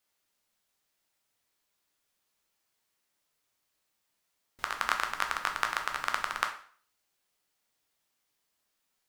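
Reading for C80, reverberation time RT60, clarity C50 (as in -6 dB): 14.0 dB, 0.45 s, 9.5 dB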